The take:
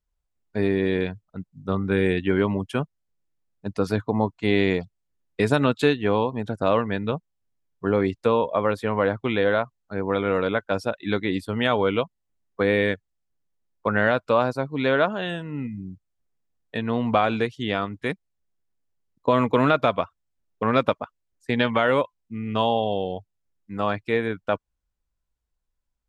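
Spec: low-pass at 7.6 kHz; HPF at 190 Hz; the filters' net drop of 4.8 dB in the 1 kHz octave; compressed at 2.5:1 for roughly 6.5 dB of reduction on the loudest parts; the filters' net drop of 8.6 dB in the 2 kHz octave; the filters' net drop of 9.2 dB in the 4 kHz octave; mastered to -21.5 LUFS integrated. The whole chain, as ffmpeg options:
-af "highpass=190,lowpass=7600,equalizer=f=1000:t=o:g=-3.5,equalizer=f=2000:t=o:g=-8.5,equalizer=f=4000:t=o:g=-8,acompressor=threshold=0.0447:ratio=2.5,volume=3.16"

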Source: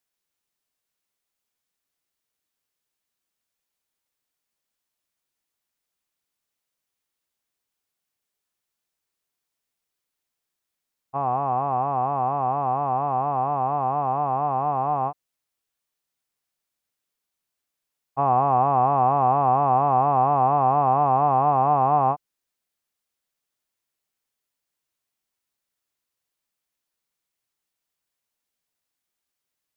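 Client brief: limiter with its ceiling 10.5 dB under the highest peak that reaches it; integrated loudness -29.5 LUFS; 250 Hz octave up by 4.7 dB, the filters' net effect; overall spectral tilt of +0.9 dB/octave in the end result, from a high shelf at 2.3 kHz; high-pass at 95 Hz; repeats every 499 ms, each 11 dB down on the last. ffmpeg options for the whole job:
-af "highpass=95,equalizer=f=250:t=o:g=6,highshelf=f=2300:g=-5,alimiter=limit=0.106:level=0:latency=1,aecho=1:1:499|998|1497:0.282|0.0789|0.0221,volume=0.891"

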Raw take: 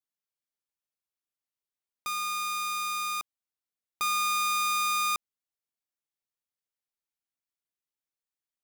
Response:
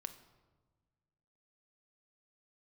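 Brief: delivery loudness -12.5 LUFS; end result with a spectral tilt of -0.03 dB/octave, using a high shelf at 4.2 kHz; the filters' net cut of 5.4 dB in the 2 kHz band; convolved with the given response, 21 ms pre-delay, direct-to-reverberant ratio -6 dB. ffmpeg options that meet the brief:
-filter_complex "[0:a]equalizer=f=2000:t=o:g=-5,highshelf=f=4200:g=-6.5,asplit=2[s0][s1];[1:a]atrim=start_sample=2205,adelay=21[s2];[s1][s2]afir=irnorm=-1:irlink=0,volume=2.99[s3];[s0][s3]amix=inputs=2:normalize=0,volume=5.96"

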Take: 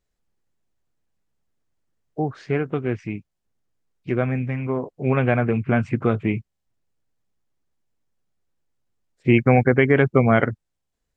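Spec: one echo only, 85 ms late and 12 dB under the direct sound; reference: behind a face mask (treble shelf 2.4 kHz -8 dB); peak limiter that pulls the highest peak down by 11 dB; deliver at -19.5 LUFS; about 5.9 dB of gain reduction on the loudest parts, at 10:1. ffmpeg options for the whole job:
-af "acompressor=threshold=0.158:ratio=10,alimiter=limit=0.126:level=0:latency=1,highshelf=f=2400:g=-8,aecho=1:1:85:0.251,volume=3.35"

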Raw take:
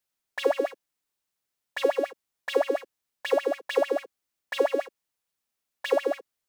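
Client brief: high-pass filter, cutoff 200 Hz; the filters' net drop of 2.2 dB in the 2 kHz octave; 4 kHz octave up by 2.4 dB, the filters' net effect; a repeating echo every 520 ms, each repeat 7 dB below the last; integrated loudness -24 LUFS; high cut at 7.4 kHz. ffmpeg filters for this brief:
-af "highpass=200,lowpass=7400,equalizer=f=2000:t=o:g=-4,equalizer=f=4000:t=o:g=5,aecho=1:1:520|1040|1560|2080|2600:0.447|0.201|0.0905|0.0407|0.0183,volume=1.78"

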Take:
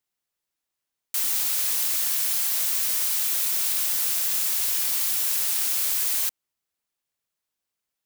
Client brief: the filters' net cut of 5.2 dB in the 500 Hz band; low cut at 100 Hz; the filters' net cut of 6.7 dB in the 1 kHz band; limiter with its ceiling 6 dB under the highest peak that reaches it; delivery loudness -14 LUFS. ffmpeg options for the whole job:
-af "highpass=100,equalizer=f=500:t=o:g=-4,equalizer=f=1000:t=o:g=-8,volume=3.16,alimiter=limit=0.447:level=0:latency=1"

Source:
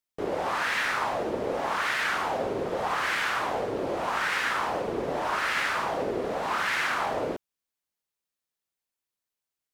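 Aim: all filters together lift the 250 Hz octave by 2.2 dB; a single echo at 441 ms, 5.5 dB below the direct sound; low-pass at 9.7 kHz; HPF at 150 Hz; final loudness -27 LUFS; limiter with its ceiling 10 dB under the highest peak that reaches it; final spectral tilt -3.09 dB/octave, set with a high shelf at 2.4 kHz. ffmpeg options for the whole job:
-af "highpass=150,lowpass=9700,equalizer=f=250:t=o:g=3.5,highshelf=f=2400:g=3.5,alimiter=limit=0.0668:level=0:latency=1,aecho=1:1:441:0.531,volume=1.58"

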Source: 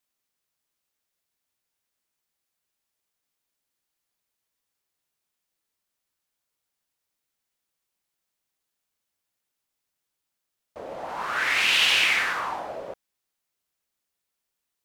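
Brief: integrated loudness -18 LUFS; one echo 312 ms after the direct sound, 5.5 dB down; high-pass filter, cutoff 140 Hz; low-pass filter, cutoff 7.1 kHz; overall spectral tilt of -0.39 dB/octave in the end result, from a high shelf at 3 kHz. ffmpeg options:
-af "highpass=140,lowpass=7100,highshelf=f=3000:g=-7,aecho=1:1:312:0.531,volume=2"

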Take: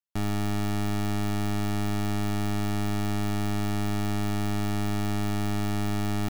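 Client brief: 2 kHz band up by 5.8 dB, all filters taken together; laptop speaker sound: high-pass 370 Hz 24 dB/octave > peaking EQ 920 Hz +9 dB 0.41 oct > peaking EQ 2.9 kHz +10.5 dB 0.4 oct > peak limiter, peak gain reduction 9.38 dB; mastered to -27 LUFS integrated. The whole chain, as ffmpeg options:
-af "highpass=f=370:w=0.5412,highpass=f=370:w=1.3066,equalizer=f=920:t=o:w=0.41:g=9,equalizer=f=2000:t=o:g=3.5,equalizer=f=2900:t=o:w=0.4:g=10.5,volume=4.47,alimiter=limit=0.168:level=0:latency=1"

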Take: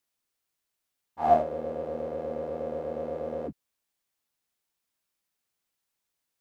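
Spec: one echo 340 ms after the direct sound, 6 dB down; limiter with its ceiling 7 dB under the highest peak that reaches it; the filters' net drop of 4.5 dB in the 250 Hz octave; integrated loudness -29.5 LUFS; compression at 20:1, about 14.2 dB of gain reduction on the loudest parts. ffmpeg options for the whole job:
-af "equalizer=f=250:t=o:g=-5.5,acompressor=threshold=0.0355:ratio=20,alimiter=level_in=1.58:limit=0.0631:level=0:latency=1,volume=0.631,aecho=1:1:340:0.501,volume=2.24"

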